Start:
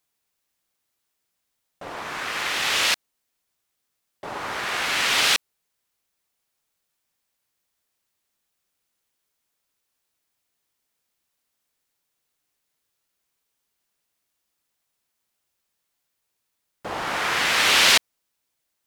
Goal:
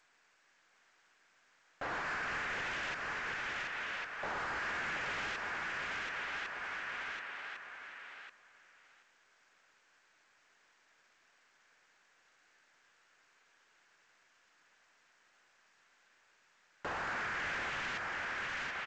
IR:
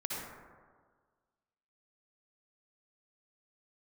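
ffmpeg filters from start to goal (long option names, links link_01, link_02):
-filter_complex "[0:a]acompressor=threshold=-22dB:ratio=6,equalizer=frequency=1600:width_type=o:width=0.73:gain=14,asplit=2[link_01][link_02];[link_02]adelay=1102,lowpass=frequency=4400:poles=1,volume=-21dB,asplit=2[link_03][link_04];[link_04]adelay=1102,lowpass=frequency=4400:poles=1,volume=0.32[link_05];[link_03][link_05]amix=inputs=2:normalize=0[link_06];[link_01][link_06]amix=inputs=2:normalize=0,asplit=2[link_07][link_08];[link_08]highpass=frequency=720:poles=1,volume=26dB,asoftclip=type=tanh:threshold=-14dB[link_09];[link_07][link_09]amix=inputs=2:normalize=0,lowpass=frequency=1300:poles=1,volume=-6dB,asplit=2[link_10][link_11];[link_11]aecho=0:1:730|1460|2190:0.531|0.0903|0.0153[link_12];[link_10][link_12]amix=inputs=2:normalize=0,aexciter=amount=1.9:drive=6.6:freq=2200,asoftclip=type=tanh:threshold=-14dB,highshelf=frequency=2200:gain=-11,alimiter=level_in=2.5dB:limit=-24dB:level=0:latency=1:release=343,volume=-2.5dB,volume=-5.5dB" -ar 16000 -c:a g722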